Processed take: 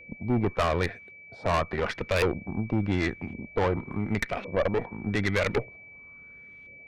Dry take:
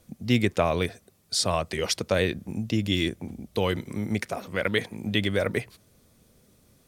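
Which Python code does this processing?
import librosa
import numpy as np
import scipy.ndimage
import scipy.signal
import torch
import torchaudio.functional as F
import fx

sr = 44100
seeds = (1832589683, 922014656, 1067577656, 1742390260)

y = fx.filter_lfo_lowpass(x, sr, shape='saw_up', hz=0.9, low_hz=510.0, high_hz=2700.0, q=3.4)
y = fx.tube_stage(y, sr, drive_db=24.0, bias=0.8)
y = y + 10.0 ** (-50.0 / 20.0) * np.sin(2.0 * np.pi * 2300.0 * np.arange(len(y)) / sr)
y = y * 10.0 ** (4.0 / 20.0)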